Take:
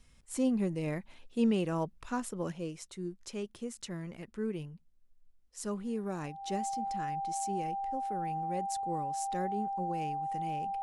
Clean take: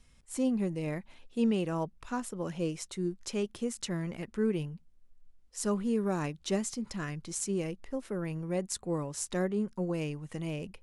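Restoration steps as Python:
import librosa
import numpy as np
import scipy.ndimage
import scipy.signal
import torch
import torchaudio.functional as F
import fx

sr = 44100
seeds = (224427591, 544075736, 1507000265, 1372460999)

y = fx.notch(x, sr, hz=790.0, q=30.0)
y = fx.gain(y, sr, db=fx.steps((0.0, 0.0), (2.52, 6.0)))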